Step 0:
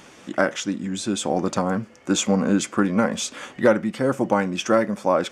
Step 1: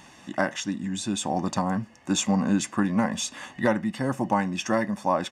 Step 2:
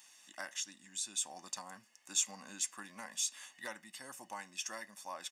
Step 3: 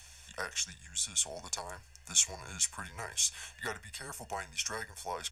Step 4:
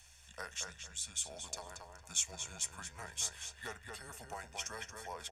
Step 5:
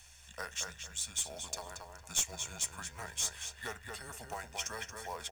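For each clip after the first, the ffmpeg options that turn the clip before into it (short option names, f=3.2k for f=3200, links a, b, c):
-af "aecho=1:1:1.1:0.61,volume=-4dB"
-af "aderivative,volume=-2.5dB"
-af "aeval=exprs='val(0)+0.000631*(sin(2*PI*50*n/s)+sin(2*PI*2*50*n/s)/2+sin(2*PI*3*50*n/s)/3+sin(2*PI*4*50*n/s)/4+sin(2*PI*5*50*n/s)/5)':c=same,afreqshift=-120,volume=6.5dB"
-filter_complex "[0:a]asplit=2[a][b];[b]adelay=228,lowpass=f=3.3k:p=1,volume=-4dB,asplit=2[c][d];[d]adelay=228,lowpass=f=3.3k:p=1,volume=0.29,asplit=2[e][f];[f]adelay=228,lowpass=f=3.3k:p=1,volume=0.29,asplit=2[g][h];[h]adelay=228,lowpass=f=3.3k:p=1,volume=0.29[i];[a][c][e][g][i]amix=inputs=5:normalize=0,volume=-7dB"
-af "aeval=exprs='clip(val(0),-1,0.0282)':c=same,acrusher=bits=4:mode=log:mix=0:aa=0.000001,volume=3dB"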